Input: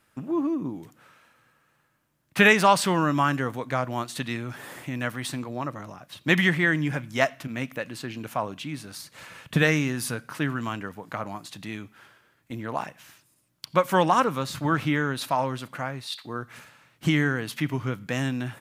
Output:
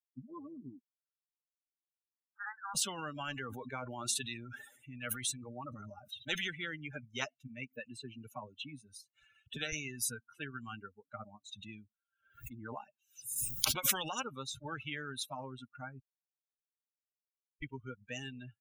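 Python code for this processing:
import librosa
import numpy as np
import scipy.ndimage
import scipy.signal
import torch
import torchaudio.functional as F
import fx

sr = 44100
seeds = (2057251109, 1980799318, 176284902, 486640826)

y = fx.cheby1_bandpass(x, sr, low_hz=850.0, high_hz=1700.0, order=4, at=(0.79, 2.75))
y = fx.sustainer(y, sr, db_per_s=22.0, at=(3.25, 6.48))
y = fx.band_squash(y, sr, depth_pct=40, at=(7.84, 9.73))
y = fx.pre_swell(y, sr, db_per_s=41.0, at=(11.48, 14.12))
y = fx.edit(y, sr, fx.silence(start_s=16.0, length_s=1.62), tone=tone)
y = fx.bin_expand(y, sr, power=3.0)
y = fx.notch(y, sr, hz=650.0, q=12.0)
y = fx.spectral_comp(y, sr, ratio=10.0)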